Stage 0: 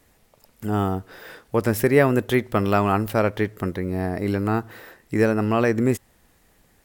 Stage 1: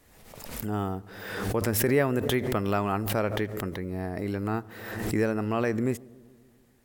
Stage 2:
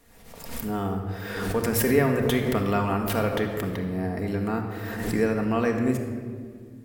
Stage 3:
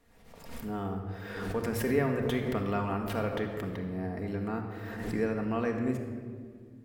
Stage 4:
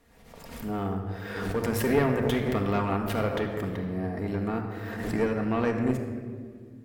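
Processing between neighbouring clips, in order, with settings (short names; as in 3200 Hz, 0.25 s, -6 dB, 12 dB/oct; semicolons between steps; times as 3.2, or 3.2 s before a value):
darkening echo 0.142 s, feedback 69%, low-pass 1000 Hz, level -22.5 dB; backwards sustainer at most 46 dB/s; gain -7.5 dB
shoebox room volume 2900 m³, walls mixed, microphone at 1.7 m
high shelf 5900 Hz -10 dB; gain -6.5 dB
tube stage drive 22 dB, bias 0.7; gain +8.5 dB; MP3 96 kbps 48000 Hz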